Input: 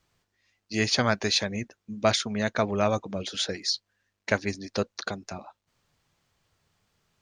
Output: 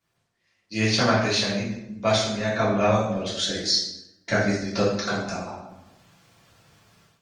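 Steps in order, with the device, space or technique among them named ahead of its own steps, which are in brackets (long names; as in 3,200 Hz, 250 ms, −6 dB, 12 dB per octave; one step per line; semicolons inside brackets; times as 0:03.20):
0:03.24–0:04.62: thirty-one-band graphic EQ 500 Hz −6 dB, 1,000 Hz −10 dB, 2,500 Hz −10 dB
far-field microphone of a smart speaker (convolution reverb RT60 0.85 s, pre-delay 3 ms, DRR −8.5 dB; high-pass filter 98 Hz 12 dB per octave; automatic gain control gain up to 14.5 dB; level −7.5 dB; Opus 24 kbit/s 48,000 Hz)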